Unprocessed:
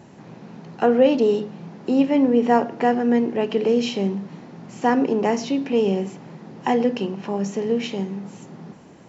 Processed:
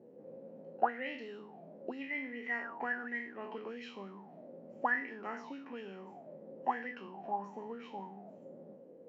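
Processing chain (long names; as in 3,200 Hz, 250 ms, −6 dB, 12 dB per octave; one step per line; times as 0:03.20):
peak hold with a decay on every bin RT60 0.53 s
octave-band graphic EQ 125/250/1,000 Hz +5/+9/−5 dB
envelope filter 470–2,000 Hz, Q 17, up, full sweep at −7.5 dBFS
level +5 dB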